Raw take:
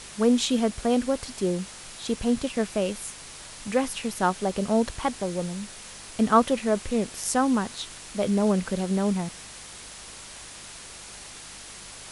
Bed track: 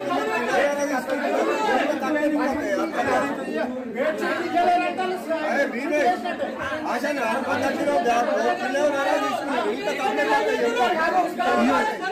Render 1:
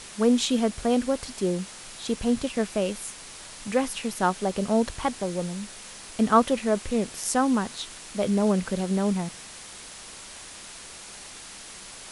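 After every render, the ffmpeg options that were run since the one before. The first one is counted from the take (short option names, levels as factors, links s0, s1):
-af "bandreject=f=50:t=h:w=4,bandreject=f=100:t=h:w=4,bandreject=f=150:t=h:w=4"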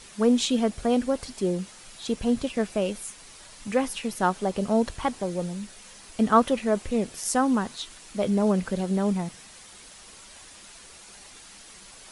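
-af "afftdn=nr=7:nf=-43"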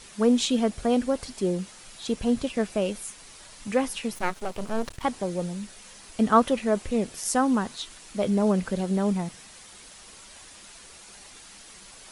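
-filter_complex "[0:a]asettb=1/sr,asplit=3[s0][s1][s2];[s0]atrim=end=4.154[s3];[s1]atrim=start=4.15:end=5.04,asetpts=PTS-STARTPTS,afade=t=in:d=0.004:c=qsin,afade=t=out:st=0.886:d=0.004:c=qsin,aeval=exprs='max(val(0),0)':c=same[s4];[s2]atrim=start=5.036[s5];[s3][s4]acrossfade=d=0.004:c1=hsin:c2=qsin[s6];[s6][s5]acrossfade=d=0.004:c1=qsin:c2=hsin"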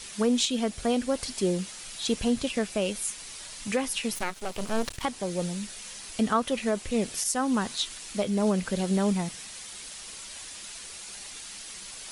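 -filter_complex "[0:a]acrossover=split=2000[s0][s1];[s1]acontrast=71[s2];[s0][s2]amix=inputs=2:normalize=0,alimiter=limit=0.178:level=0:latency=1:release=386"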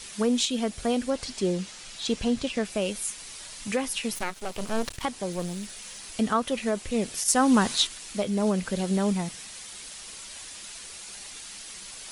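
-filter_complex "[0:a]asettb=1/sr,asplit=3[s0][s1][s2];[s0]atrim=end=1.104[s3];[s1]atrim=start=1.1:end=2.65,asetpts=PTS-STARTPTS,afade=t=in:d=0.004:c=qsin,afade=t=out:st=1.546:d=0.004:c=qsin,lowpass=7700[s4];[s2]atrim=start=2.646[s5];[s3][s4]acrossfade=d=0.004:c1=hsin:c2=qsin[s6];[s6][s5]acrossfade=d=0.004:c1=qsin:c2=hsin,asettb=1/sr,asplit=3[s7][s8][s9];[s7]atrim=end=5.324[s10];[s8]atrim=start=5.32:end=6.14,asetpts=PTS-STARTPTS,afade=t=in:d=0.004:c=qsin,afade=t=out:st=0.816:d=0.004:c=qsin,aeval=exprs='clip(val(0),-1,0.0188)':c=same[s11];[s9]atrim=start=6.136[s12];[s10][s11]acrossfade=d=0.004:c1=hsin:c2=qsin[s13];[s13][s12]acrossfade=d=0.004:c1=qsin:c2=hsin,asettb=1/sr,asplit=3[s14][s15][s16];[s14]atrim=end=7.284[s17];[s15]atrim=start=7.28:end=7.87,asetpts=PTS-STARTPTS,afade=t=in:d=0.004:c=qsin,afade=t=out:st=0.586:d=0.004:c=qsin,acontrast=58[s18];[s16]atrim=start=7.866[s19];[s17][s18]acrossfade=d=0.004:c1=hsin:c2=qsin[s20];[s20][s19]acrossfade=d=0.004:c1=qsin:c2=hsin"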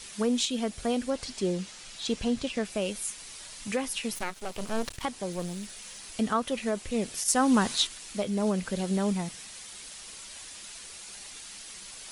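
-af "volume=0.75"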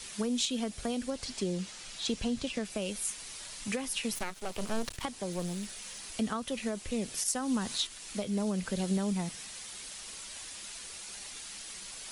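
-filter_complex "[0:a]alimiter=limit=0.106:level=0:latency=1:release=329,acrossover=split=220|3000[s0][s1][s2];[s1]acompressor=threshold=0.0224:ratio=6[s3];[s0][s3][s2]amix=inputs=3:normalize=0"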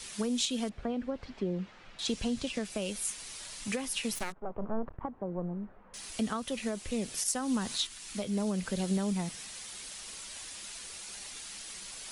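-filter_complex "[0:a]asettb=1/sr,asplit=3[s0][s1][s2];[s0]atrim=end=0.694[s3];[s1]atrim=start=0.69:end=1.99,asetpts=PTS-STARTPTS,afade=t=in:d=0.004:c=qsin,afade=t=out:st=1.296:d=0.004:c=qsin,lowpass=1800[s4];[s2]atrim=start=1.986[s5];[s3][s4]acrossfade=d=0.004:c1=hsin:c2=qsin[s6];[s6][s5]acrossfade=d=0.004:c1=qsin:c2=hsin,asettb=1/sr,asplit=3[s7][s8][s9];[s7]atrim=end=4.324[s10];[s8]atrim=start=4.32:end=5.94,asetpts=PTS-STARTPTS,afade=t=in:d=0.004:c=qsin,afade=t=out:st=1.616:d=0.004:c=qsin,lowpass=f=1200:w=0.5412,lowpass=f=1200:w=1.3066[s11];[s9]atrim=start=5.936[s12];[s10][s11]acrossfade=d=0.004:c1=hsin:c2=qsin[s13];[s13][s12]acrossfade=d=0.004:c1=qsin:c2=hsin,asettb=1/sr,asplit=3[s14][s15][s16];[s14]atrim=end=7.764[s17];[s15]atrim=start=7.76:end=8.2,asetpts=PTS-STARTPTS,afade=t=in:d=0.004:c=qsin,afade=t=out:st=0.436:d=0.004:c=qsin,equalizer=f=520:t=o:w=0.96:g=-6[s18];[s16]atrim=start=8.196[s19];[s17][s18]acrossfade=d=0.004:c1=hsin:c2=qsin[s20];[s20][s19]acrossfade=d=0.004:c1=qsin:c2=hsin"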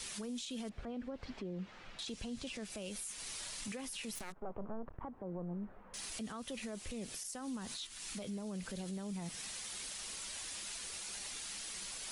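-af "acompressor=threshold=0.0141:ratio=6,alimiter=level_in=3.55:limit=0.0631:level=0:latency=1:release=11,volume=0.282"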